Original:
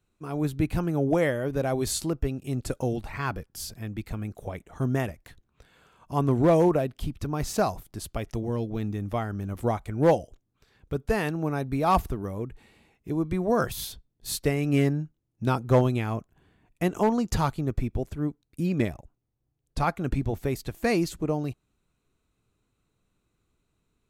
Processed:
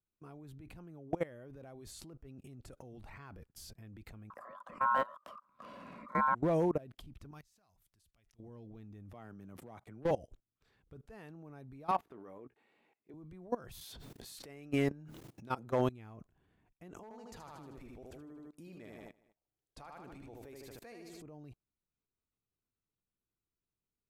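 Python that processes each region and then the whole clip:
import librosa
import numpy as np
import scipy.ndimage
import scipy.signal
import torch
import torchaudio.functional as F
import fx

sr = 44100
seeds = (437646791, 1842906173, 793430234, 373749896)

y = fx.chain(x, sr, fx.ring_mod(carrier_hz=1200.0),
    fx.small_body(hz=(220.0, 570.0, 1000.0), ring_ms=35, db=16),
    fx.band_squash(depth_pct=70), at=(4.3, 6.35))
y = fx.chain(y, sr, fx.tone_stack(knobs='5-5-5'),
    fx.over_compress(threshold_db=-46.0, ratio=-0.5), at=(7.31, 8.4))
y = fx.chain(y, sr, fx.highpass(hz=120.0, slope=24),
    fx.overload_stage(gain_db=15.5), at=(9.13, 10.11))
y = fx.chain(y, sr, fx.highpass(hz=180.0, slope=12),
    fx.bass_treble(bass_db=-11, treble_db=-11),
    fx.doubler(ms=17.0, db=-11.5), at=(11.91, 13.14))
y = fx.chain(y, sr, fx.highpass(hz=360.0, slope=6),
    fx.env_flatten(amount_pct=70), at=(13.81, 15.89))
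y = fx.chain(y, sr, fx.bass_treble(bass_db=-12, treble_db=3),
    fx.echo_feedback(ms=77, feedback_pct=46, wet_db=-5.0), at=(17.03, 21.22))
y = fx.high_shelf(y, sr, hz=3600.0, db=-5.5)
y = fx.transient(y, sr, attack_db=-3, sustain_db=5)
y = fx.level_steps(y, sr, step_db=22)
y = F.gain(torch.from_numpy(y), -7.0).numpy()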